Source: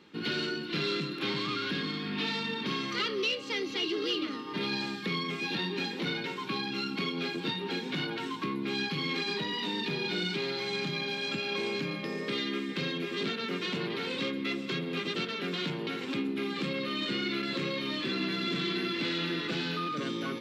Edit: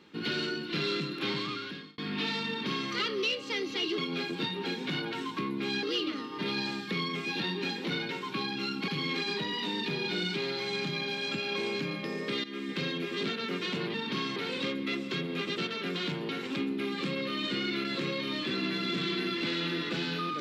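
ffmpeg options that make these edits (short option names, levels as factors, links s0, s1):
-filter_complex "[0:a]asplit=8[s0][s1][s2][s3][s4][s5][s6][s7];[s0]atrim=end=1.98,asetpts=PTS-STARTPTS,afade=t=out:st=1.34:d=0.64[s8];[s1]atrim=start=1.98:end=3.982,asetpts=PTS-STARTPTS,afade=t=in:d=0.004:c=hsin[s9];[s2]atrim=start=7.028:end=8.882[s10];[s3]atrim=start=3.978:end=7.032[s11];[s4]atrim=start=8.878:end=12.44,asetpts=PTS-STARTPTS,afade=t=out:st=3.558:d=0.004:c=hsin:silence=0.199526[s12];[s5]atrim=start=12.44:end=13.942,asetpts=PTS-STARTPTS,afade=t=in:d=0.26:silence=0.199526[s13];[s6]atrim=start=2.478:end=2.902[s14];[s7]atrim=start=13.938[s15];[s8][s9]concat=n=2:v=0:a=1[s16];[s16][s10]acrossfade=d=0.004:c1=hsin:c2=hsin[s17];[s17][s11]acrossfade=d=0.004:c1=hsin:c2=hsin[s18];[s12][s13]concat=n=2:v=0:a=1[s19];[s18][s19]acrossfade=d=0.004:c1=hsin:c2=hsin[s20];[s20][s14]acrossfade=d=0.004:c1=hsin:c2=hsin[s21];[s21][s15]acrossfade=d=0.004:c1=hsin:c2=hsin"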